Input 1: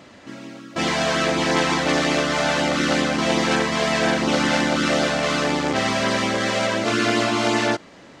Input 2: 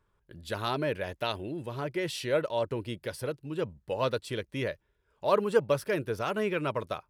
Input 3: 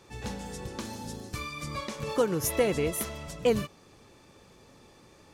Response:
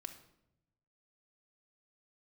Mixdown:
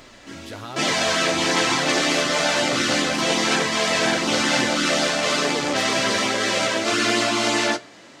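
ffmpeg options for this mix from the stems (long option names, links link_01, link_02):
-filter_complex "[0:a]highpass=frequency=190:poles=1,highshelf=frequency=2900:gain=8.5,volume=0.5dB,asplit=2[link_01][link_02];[link_02]volume=-8dB[link_03];[1:a]volume=2.5dB,acompressor=mode=upward:threshold=-35dB:ratio=2.5,alimiter=limit=-20dB:level=0:latency=1,volume=0dB[link_04];[3:a]atrim=start_sample=2205[link_05];[link_03][link_05]afir=irnorm=-1:irlink=0[link_06];[link_01][link_04][link_06]amix=inputs=3:normalize=0,flanger=delay=7:depth=5.8:regen=-46:speed=1.1:shape=triangular"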